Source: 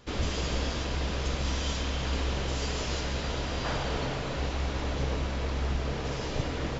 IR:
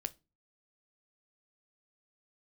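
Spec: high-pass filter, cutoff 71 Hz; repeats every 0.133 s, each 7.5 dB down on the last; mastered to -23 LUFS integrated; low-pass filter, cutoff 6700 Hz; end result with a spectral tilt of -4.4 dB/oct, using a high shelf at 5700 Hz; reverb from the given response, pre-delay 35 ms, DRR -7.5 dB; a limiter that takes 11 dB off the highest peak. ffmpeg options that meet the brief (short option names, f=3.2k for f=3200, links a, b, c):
-filter_complex "[0:a]highpass=71,lowpass=6.7k,highshelf=f=5.7k:g=3.5,alimiter=level_in=5dB:limit=-24dB:level=0:latency=1,volume=-5dB,aecho=1:1:133|266|399|532|665:0.422|0.177|0.0744|0.0312|0.0131,asplit=2[a][b];[1:a]atrim=start_sample=2205,adelay=35[c];[b][c]afir=irnorm=-1:irlink=0,volume=8.5dB[d];[a][d]amix=inputs=2:normalize=0,volume=6dB"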